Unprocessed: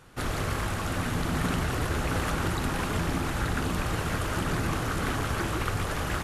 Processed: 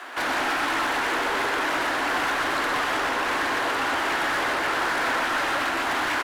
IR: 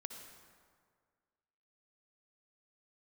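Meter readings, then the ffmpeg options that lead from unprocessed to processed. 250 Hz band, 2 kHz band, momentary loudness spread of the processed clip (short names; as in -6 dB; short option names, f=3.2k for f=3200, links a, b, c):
-2.0 dB, +10.5 dB, 1 LU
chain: -filter_complex "[0:a]afreqshift=230,alimiter=limit=-22.5dB:level=0:latency=1:release=489,asplit=2[a][b];[b]highpass=f=720:p=1,volume=13dB,asoftclip=type=tanh:threshold=-22.5dB[c];[a][c]amix=inputs=2:normalize=0,lowpass=f=3.5k:p=1,volume=-6dB,lowshelf=f=600:t=q:w=1.5:g=-8,acrusher=bits=11:mix=0:aa=0.000001,asoftclip=type=tanh:threshold=-34dB,aecho=1:1:124:0.501,asplit=2[d][e];[1:a]atrim=start_sample=2205,lowpass=4.5k[f];[e][f]afir=irnorm=-1:irlink=0,volume=-1.5dB[g];[d][g]amix=inputs=2:normalize=0,volume=8dB"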